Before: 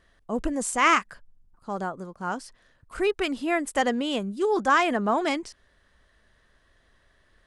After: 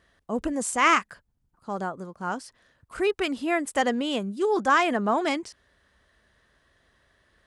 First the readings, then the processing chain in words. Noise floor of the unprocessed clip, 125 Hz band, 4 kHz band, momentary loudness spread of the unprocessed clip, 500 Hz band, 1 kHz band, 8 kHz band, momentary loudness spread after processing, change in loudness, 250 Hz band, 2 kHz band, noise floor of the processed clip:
-64 dBFS, 0.0 dB, 0.0 dB, 14 LU, 0.0 dB, 0.0 dB, 0.0 dB, 14 LU, 0.0 dB, 0.0 dB, 0.0 dB, -72 dBFS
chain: HPF 53 Hz

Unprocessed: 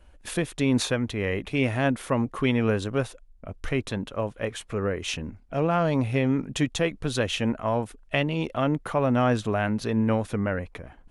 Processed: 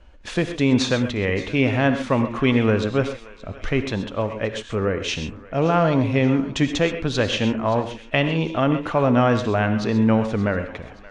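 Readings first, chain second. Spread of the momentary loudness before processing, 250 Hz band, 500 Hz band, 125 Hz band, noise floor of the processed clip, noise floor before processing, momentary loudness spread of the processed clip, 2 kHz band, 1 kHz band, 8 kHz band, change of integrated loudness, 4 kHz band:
9 LU, +5.5 dB, +5.0 dB, +4.5 dB, -43 dBFS, -53 dBFS, 9 LU, +5.0 dB, +5.0 dB, +0.5 dB, +5.0 dB, +5.0 dB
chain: LPF 6400 Hz 24 dB/oct; on a send: thinning echo 0.575 s, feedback 48%, high-pass 950 Hz, level -17 dB; on the sum: non-linear reverb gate 0.15 s rising, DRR 8.5 dB; gain +4.5 dB

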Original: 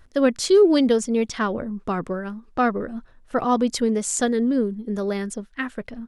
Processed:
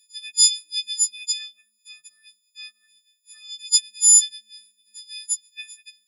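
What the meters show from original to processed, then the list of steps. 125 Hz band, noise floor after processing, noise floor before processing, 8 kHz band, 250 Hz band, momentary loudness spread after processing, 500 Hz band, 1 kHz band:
under -40 dB, -70 dBFS, -52 dBFS, +14.5 dB, under -40 dB, 24 LU, under -40 dB, under -40 dB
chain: frequency quantiser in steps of 6 st; elliptic high-pass 2800 Hz, stop band 60 dB

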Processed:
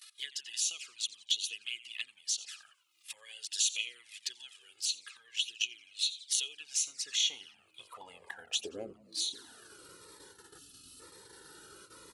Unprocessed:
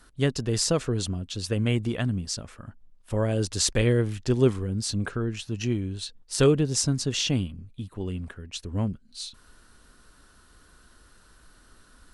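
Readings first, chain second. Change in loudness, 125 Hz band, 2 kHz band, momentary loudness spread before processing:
-7.5 dB, under -40 dB, -5.5 dB, 14 LU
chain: octaver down 2 oct, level 0 dB; comb 2.4 ms, depth 38%; gate -52 dBFS, range -44 dB; on a send: frequency-shifting echo 87 ms, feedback 41%, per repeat -120 Hz, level -18 dB; on the sum: compressor 4:1, threshold -33 dBFS, peak gain reduction 18 dB; low shelf 270 Hz -5.5 dB; high-pass sweep 2800 Hz -> 220 Hz, 6.45–9.9; spectral gain 10.58–11, 300–2500 Hz -17 dB; envelope flanger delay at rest 2.7 ms, full sweep at -36 dBFS; upward compressor, threshold -55 dBFS; cascading phaser falling 1 Hz; gain +7.5 dB

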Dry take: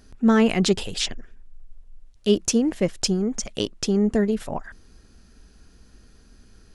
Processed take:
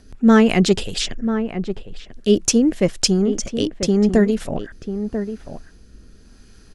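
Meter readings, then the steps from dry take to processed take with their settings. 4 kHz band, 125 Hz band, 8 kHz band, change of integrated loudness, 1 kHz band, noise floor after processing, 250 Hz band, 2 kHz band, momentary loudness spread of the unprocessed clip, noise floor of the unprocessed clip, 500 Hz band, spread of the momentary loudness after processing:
+3.5 dB, +5.5 dB, +5.0 dB, +4.0 dB, +4.5 dB, -47 dBFS, +5.5 dB, +5.0 dB, 10 LU, -53 dBFS, +5.0 dB, 15 LU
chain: rotary speaker horn 5 Hz, later 0.85 Hz, at 1.95; outdoor echo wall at 170 m, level -9 dB; gain +6.5 dB

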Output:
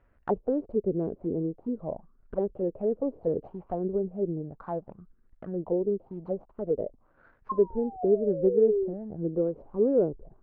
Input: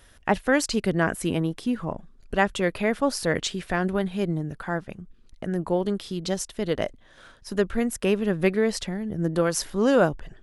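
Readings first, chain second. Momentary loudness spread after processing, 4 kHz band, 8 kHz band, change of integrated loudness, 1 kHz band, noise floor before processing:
12 LU, under -40 dB, under -40 dB, -3.5 dB, -9.5 dB, -54 dBFS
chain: median filter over 25 samples; painted sound fall, 7.49–8.94, 350–1100 Hz -28 dBFS; envelope low-pass 430–1900 Hz down, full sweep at -22 dBFS; gain -9 dB

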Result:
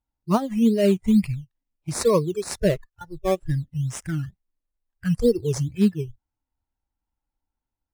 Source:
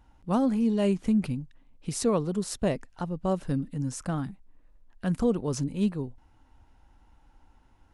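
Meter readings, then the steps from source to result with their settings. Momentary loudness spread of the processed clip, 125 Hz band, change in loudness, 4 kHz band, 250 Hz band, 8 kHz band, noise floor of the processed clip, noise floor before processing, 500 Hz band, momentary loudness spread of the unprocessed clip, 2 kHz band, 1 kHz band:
13 LU, +5.5 dB, +5.5 dB, +5.5 dB, +4.0 dB, +3.5 dB, under -85 dBFS, -60 dBFS, +7.0 dB, 11 LU, +6.0 dB, +3.5 dB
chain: G.711 law mismatch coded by A; spectral noise reduction 26 dB; in parallel at -6 dB: decimation with a swept rate 12×, swing 60% 2.2 Hz; on the sum: gain +5 dB

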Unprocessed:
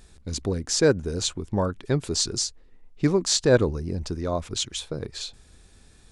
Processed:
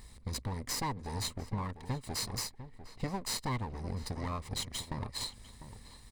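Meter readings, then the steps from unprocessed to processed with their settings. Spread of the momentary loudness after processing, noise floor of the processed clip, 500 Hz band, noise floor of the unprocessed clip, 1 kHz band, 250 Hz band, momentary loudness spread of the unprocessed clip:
16 LU, -55 dBFS, -21.5 dB, -54 dBFS, -3.5 dB, -14.0 dB, 12 LU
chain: minimum comb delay 1 ms; ripple EQ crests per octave 0.95, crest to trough 6 dB; compressor 4:1, threshold -35 dBFS, peak gain reduction 17 dB; outdoor echo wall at 120 m, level -12 dB

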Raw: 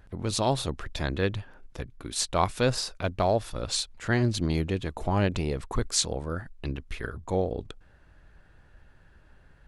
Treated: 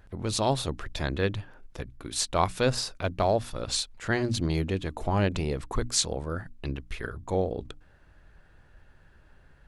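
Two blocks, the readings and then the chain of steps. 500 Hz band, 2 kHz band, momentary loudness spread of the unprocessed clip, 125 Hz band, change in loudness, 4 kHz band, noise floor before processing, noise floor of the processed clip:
0.0 dB, 0.0 dB, 12 LU, -1.0 dB, -0.5 dB, 0.0 dB, -57 dBFS, -57 dBFS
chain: notches 60/120/180/240/300 Hz

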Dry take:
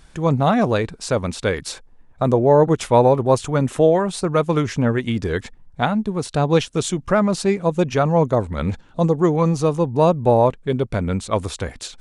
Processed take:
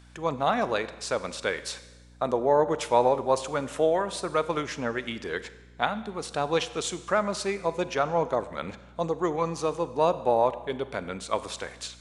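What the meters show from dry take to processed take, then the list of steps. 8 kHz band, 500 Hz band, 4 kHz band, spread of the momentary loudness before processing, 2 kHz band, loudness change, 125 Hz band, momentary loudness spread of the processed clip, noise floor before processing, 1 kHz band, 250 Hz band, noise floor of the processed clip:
-5.5 dB, -8.0 dB, -4.0 dB, 9 LU, -4.0 dB, -8.5 dB, -19.0 dB, 11 LU, -48 dBFS, -5.0 dB, -13.5 dB, -51 dBFS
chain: weighting filter A; Schroeder reverb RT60 1.2 s, combs from 32 ms, DRR 13.5 dB; hum 60 Hz, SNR 25 dB; gain -5 dB

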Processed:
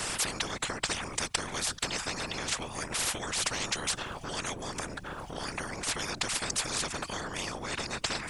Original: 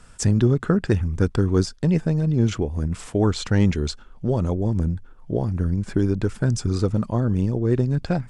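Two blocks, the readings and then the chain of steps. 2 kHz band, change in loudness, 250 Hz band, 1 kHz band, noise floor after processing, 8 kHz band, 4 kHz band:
+3.0 dB, -10.0 dB, -20.0 dB, -0.5 dB, -44 dBFS, +6.0 dB, +5.0 dB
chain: compressor 2:1, threshold -31 dBFS, peak gain reduction 10 dB; whisperiser; spectral compressor 10:1

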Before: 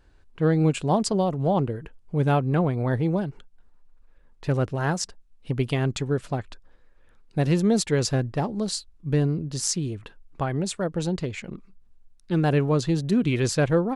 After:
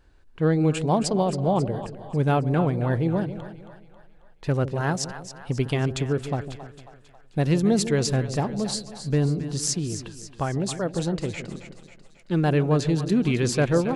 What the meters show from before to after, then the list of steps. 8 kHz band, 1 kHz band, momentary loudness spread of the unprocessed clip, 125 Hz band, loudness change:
+0.5 dB, +0.5 dB, 11 LU, +0.5 dB, +0.5 dB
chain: split-band echo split 620 Hz, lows 0.153 s, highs 0.271 s, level -11 dB

